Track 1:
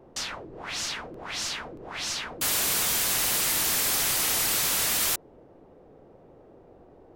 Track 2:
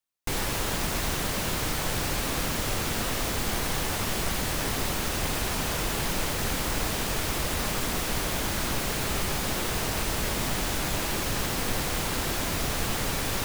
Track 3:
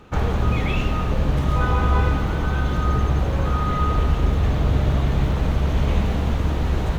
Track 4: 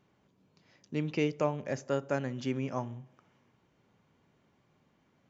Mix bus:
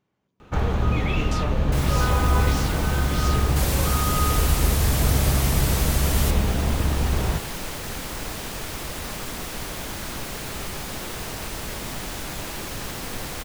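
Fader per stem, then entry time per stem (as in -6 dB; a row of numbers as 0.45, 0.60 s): -5.0, -3.5, -1.5, -6.0 dB; 1.15, 1.45, 0.40, 0.00 s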